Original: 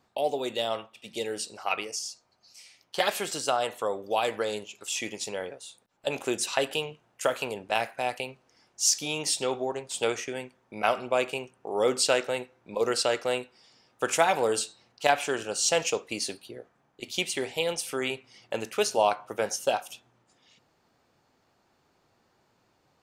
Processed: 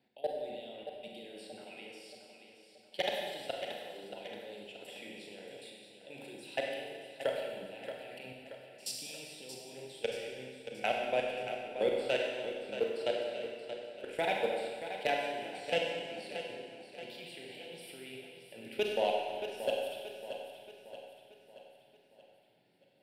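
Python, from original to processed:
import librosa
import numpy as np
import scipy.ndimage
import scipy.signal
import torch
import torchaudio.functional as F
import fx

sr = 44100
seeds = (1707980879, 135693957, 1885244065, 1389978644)

p1 = scipy.signal.sosfilt(scipy.signal.butter(4, 120.0, 'highpass', fs=sr, output='sos'), x)
p2 = fx.high_shelf(p1, sr, hz=10000.0, db=-7.0)
p3 = fx.hum_notches(p2, sr, base_hz=50, count=8)
p4 = fx.level_steps(p3, sr, step_db=24)
p5 = fx.fixed_phaser(p4, sr, hz=2800.0, stages=4)
p6 = 10.0 ** (-19.0 / 20.0) * np.tanh(p5 / 10.0 ** (-19.0 / 20.0))
p7 = p6 + fx.echo_feedback(p6, sr, ms=628, feedback_pct=49, wet_db=-10, dry=0)
p8 = fx.rev_schroeder(p7, sr, rt60_s=1.7, comb_ms=31, drr_db=0.0)
y = F.gain(torch.from_numpy(p8), -1.0).numpy()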